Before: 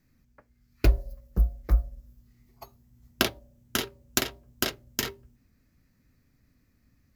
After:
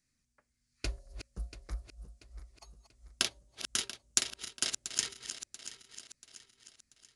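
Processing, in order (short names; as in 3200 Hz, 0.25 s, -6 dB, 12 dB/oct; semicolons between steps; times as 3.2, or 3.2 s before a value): regenerating reverse delay 0.343 s, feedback 64%, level -10 dB; downsampling 22050 Hz; pre-emphasis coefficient 0.9; gain +2.5 dB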